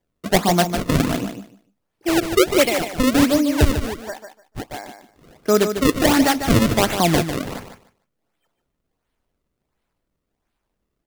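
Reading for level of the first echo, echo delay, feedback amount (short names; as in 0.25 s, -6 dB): -8.5 dB, 0.149 s, 18%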